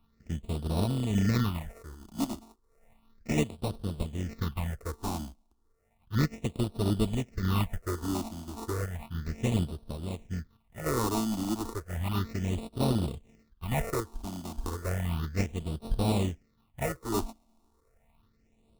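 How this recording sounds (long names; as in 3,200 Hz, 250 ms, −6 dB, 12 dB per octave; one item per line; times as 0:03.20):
a buzz of ramps at a fixed pitch in blocks of 32 samples
sample-and-hold tremolo
aliases and images of a low sample rate 1,600 Hz, jitter 0%
phaser sweep stages 6, 0.33 Hz, lowest notch 120–2,000 Hz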